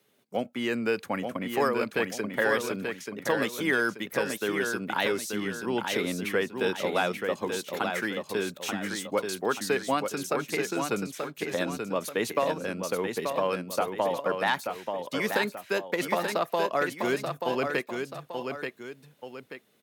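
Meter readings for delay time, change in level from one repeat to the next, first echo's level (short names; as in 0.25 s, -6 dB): 0.883 s, -7.5 dB, -5.5 dB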